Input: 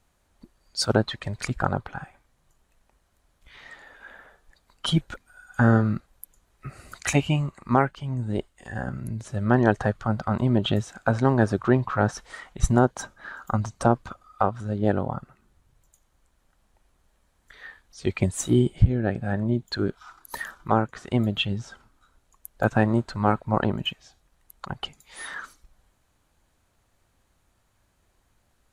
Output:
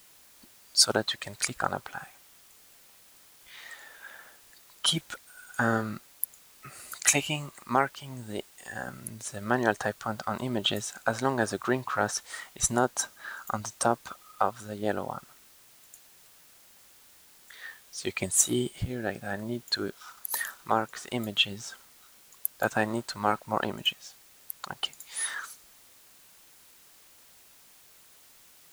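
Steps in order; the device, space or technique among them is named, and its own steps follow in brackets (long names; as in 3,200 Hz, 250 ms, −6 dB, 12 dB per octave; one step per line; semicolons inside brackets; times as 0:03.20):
turntable without a phono preamp (RIAA equalisation recording; white noise bed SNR 24 dB)
level −2.5 dB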